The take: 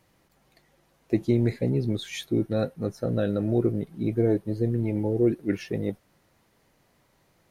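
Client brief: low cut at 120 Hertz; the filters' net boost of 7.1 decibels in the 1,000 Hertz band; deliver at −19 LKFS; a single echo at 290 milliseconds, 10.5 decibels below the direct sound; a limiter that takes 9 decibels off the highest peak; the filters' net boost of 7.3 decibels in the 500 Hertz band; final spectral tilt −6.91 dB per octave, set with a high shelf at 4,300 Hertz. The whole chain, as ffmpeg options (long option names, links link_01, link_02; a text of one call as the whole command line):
ffmpeg -i in.wav -af "highpass=120,equalizer=frequency=500:width_type=o:gain=8,equalizer=frequency=1000:width_type=o:gain=6.5,highshelf=frequency=4300:gain=4,alimiter=limit=-15.5dB:level=0:latency=1,aecho=1:1:290:0.299,volume=7dB" out.wav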